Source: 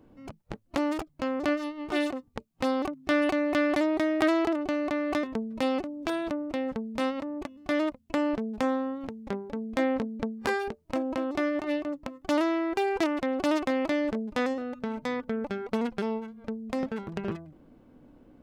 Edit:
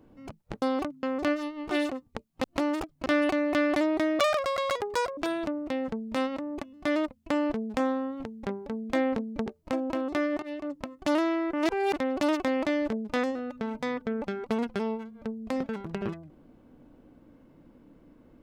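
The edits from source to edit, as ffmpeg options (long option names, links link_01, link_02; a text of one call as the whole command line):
ffmpeg -i in.wav -filter_complex "[0:a]asplit=11[link_01][link_02][link_03][link_04][link_05][link_06][link_07][link_08][link_09][link_10][link_11];[link_01]atrim=end=0.622[link_12];[link_02]atrim=start=2.648:end=3.062[link_13];[link_03]atrim=start=1.238:end=2.652[link_14];[link_04]atrim=start=0.618:end=1.242[link_15];[link_05]atrim=start=3.058:end=4.194[link_16];[link_06]atrim=start=4.19:end=6.01,asetpts=PTS-STARTPTS,asetrate=81585,aresample=44100[link_17];[link_07]atrim=start=6.006:end=10.302[link_18];[link_08]atrim=start=10.688:end=11.65,asetpts=PTS-STARTPTS,afade=type=out:start_time=0.958:duration=0.004:curve=hsin:silence=0.177828[link_19];[link_09]atrim=start=11.65:end=12.762,asetpts=PTS-STARTPTS,afade=type=in:duration=0.31:silence=0.177828[link_20];[link_10]atrim=start=12.758:end=13.162,asetpts=PTS-STARTPTS,areverse[link_21];[link_11]atrim=start=13.158[link_22];[link_12][link_13]acrossfade=duration=0.004:curve1=hsin:curve2=hsin[link_23];[link_23][link_14]acrossfade=duration=0.004:curve1=hsin:curve2=hsin[link_24];[link_24][link_15]acrossfade=duration=0.004:curve1=hsin:curve2=hsin[link_25];[link_25][link_16]acrossfade=duration=0.004:curve1=hsin:curve2=hsin[link_26];[link_26][link_17]acrossfade=duration=0.004:curve1=hsin:curve2=hsin[link_27];[link_27][link_18]acrossfade=duration=0.004:curve1=hsin:curve2=hsin[link_28];[link_19][link_20]concat=n=2:v=0:a=1[link_29];[link_28][link_29]acrossfade=duration=0.004:curve1=hsin:curve2=hsin[link_30];[link_30][link_21]acrossfade=duration=0.004:curve1=hsin:curve2=hsin[link_31];[link_31][link_22]acrossfade=duration=0.004:curve1=hsin:curve2=hsin" out.wav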